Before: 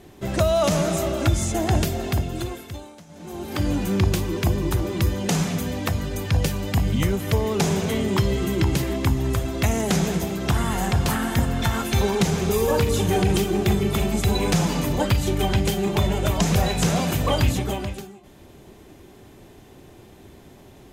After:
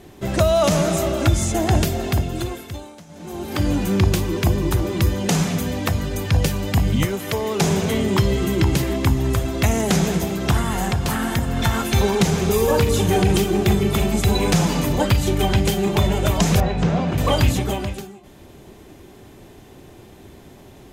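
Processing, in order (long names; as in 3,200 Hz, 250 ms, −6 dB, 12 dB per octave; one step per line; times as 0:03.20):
0:07.05–0:07.61: high-pass filter 330 Hz 6 dB per octave
0:10.58–0:11.57: downward compressor, threshold −20 dBFS, peak gain reduction 5.5 dB
0:16.60–0:17.18: head-to-tape spacing loss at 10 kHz 28 dB
level +3 dB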